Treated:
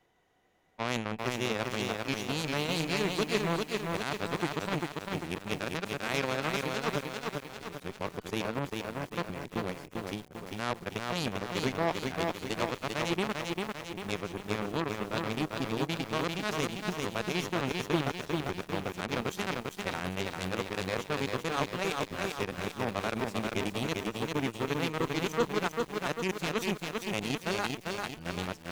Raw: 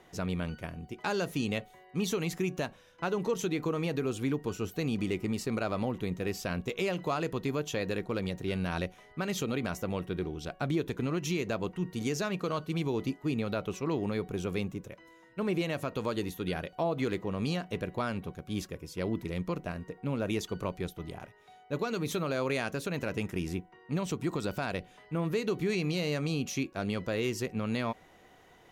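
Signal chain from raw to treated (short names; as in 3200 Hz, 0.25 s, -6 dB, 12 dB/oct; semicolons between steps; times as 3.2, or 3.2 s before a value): whole clip reversed; added harmonics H 3 -11 dB, 6 -30 dB, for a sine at -19.5 dBFS; lo-fi delay 0.396 s, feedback 55%, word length 9-bit, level -3 dB; gain +4 dB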